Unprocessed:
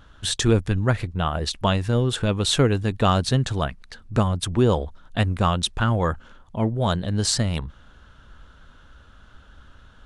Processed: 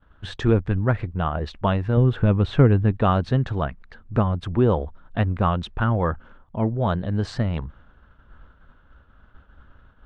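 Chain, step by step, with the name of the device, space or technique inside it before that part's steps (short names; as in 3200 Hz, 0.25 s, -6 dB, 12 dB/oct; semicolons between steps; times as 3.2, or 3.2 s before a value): hearing-loss simulation (LPF 1900 Hz 12 dB/oct; expander -44 dBFS); 1.97–2.92 tone controls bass +6 dB, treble -8 dB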